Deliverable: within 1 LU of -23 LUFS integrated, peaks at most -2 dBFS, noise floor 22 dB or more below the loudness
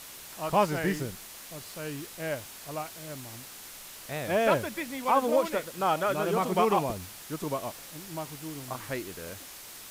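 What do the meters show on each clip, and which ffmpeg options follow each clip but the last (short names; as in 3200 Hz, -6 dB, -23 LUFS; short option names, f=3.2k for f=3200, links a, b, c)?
noise floor -46 dBFS; noise floor target -53 dBFS; loudness -30.5 LUFS; peak -11.5 dBFS; loudness target -23.0 LUFS
-> -af "afftdn=nr=7:nf=-46"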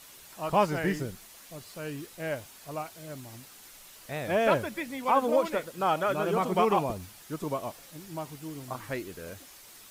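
noise floor -51 dBFS; noise floor target -52 dBFS
-> -af "afftdn=nr=6:nf=-51"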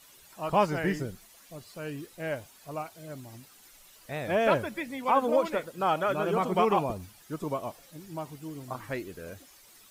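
noise floor -56 dBFS; loudness -30.0 LUFS; peak -11.5 dBFS; loudness target -23.0 LUFS
-> -af "volume=7dB"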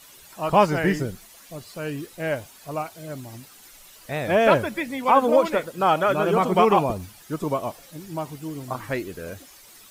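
loudness -23.0 LUFS; peak -4.5 dBFS; noise floor -49 dBFS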